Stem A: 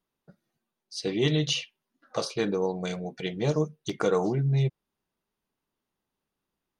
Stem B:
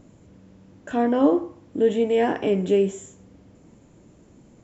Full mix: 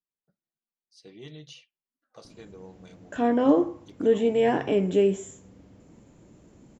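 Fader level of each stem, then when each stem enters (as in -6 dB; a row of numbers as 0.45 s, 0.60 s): -19.5 dB, -1.5 dB; 0.00 s, 2.25 s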